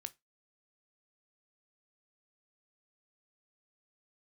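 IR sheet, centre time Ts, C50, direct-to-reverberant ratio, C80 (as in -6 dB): 2 ms, 24.0 dB, 12.5 dB, 34.0 dB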